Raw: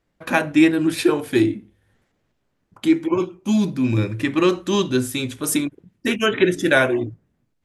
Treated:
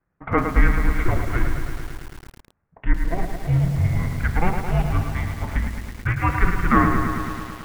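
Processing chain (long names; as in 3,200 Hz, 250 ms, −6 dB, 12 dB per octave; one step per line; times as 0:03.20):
gain on one half-wave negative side −7 dB
single-sideband voice off tune −350 Hz 180–2,400 Hz
feedback echo at a low word length 108 ms, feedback 80%, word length 7 bits, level −6.5 dB
level +2.5 dB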